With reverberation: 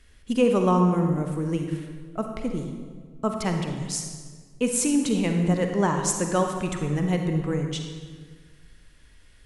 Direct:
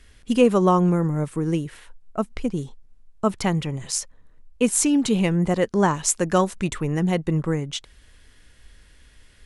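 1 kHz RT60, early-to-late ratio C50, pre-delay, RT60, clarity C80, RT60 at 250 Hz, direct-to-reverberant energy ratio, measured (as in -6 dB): 1.5 s, 4.5 dB, 39 ms, 1.6 s, 6.5 dB, 1.9 s, 4.0 dB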